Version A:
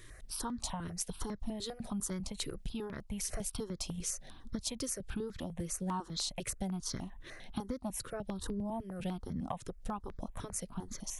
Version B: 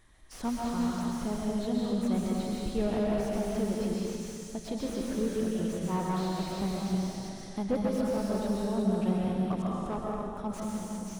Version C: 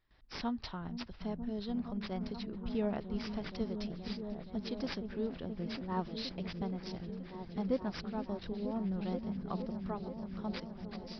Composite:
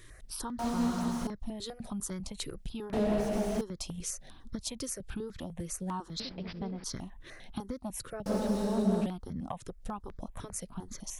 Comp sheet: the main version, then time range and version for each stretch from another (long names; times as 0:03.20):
A
0:00.59–0:01.27: punch in from B
0:02.93–0:03.61: punch in from B
0:06.20–0:06.84: punch in from C
0:08.26–0:09.06: punch in from B